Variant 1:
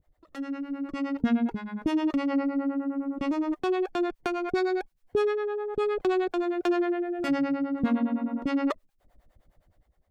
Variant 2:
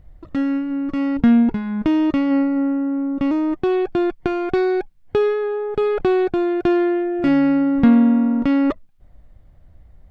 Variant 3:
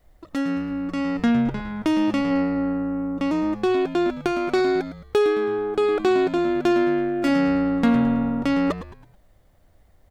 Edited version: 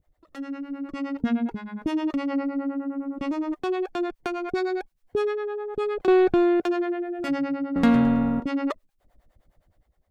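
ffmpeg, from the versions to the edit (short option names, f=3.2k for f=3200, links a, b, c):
-filter_complex "[0:a]asplit=3[a][b][c];[a]atrim=end=6.082[d];[1:a]atrim=start=6.078:end=6.602[e];[b]atrim=start=6.598:end=7.762[f];[2:a]atrim=start=7.758:end=8.402[g];[c]atrim=start=8.398[h];[d][e]acrossfade=d=0.004:c1=hsin:c2=hsin[i];[i][f]acrossfade=d=0.004:c1=hsin:c2=hsin[j];[j][g]acrossfade=d=0.004:c1=hsin:c2=hsin[k];[k][h]acrossfade=d=0.004:c1=hsin:c2=hsin"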